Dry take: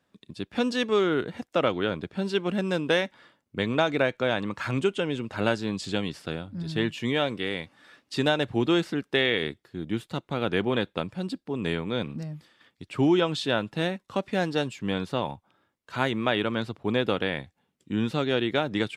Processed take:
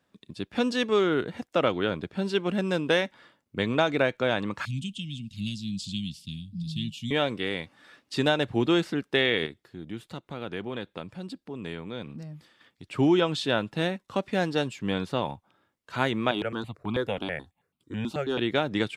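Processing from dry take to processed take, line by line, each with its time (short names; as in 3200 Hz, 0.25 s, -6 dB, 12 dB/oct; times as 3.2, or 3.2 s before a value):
4.65–7.11 elliptic band-stop 210–3100 Hz
9.46–12.84 compressor 1.5:1, threshold -45 dBFS
16.31–18.39 step phaser 9.2 Hz 490–1800 Hz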